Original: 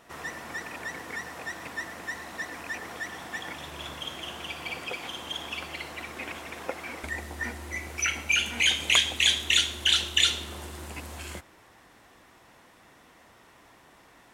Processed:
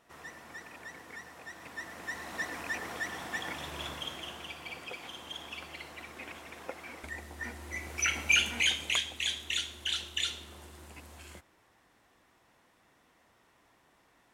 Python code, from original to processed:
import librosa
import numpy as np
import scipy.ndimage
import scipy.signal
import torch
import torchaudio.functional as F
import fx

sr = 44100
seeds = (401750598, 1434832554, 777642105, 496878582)

y = fx.gain(x, sr, db=fx.line((1.48, -10.0), (2.38, -0.5), (3.82, -0.5), (4.61, -7.5), (7.33, -7.5), (8.34, 0.0), (9.08, -10.5)))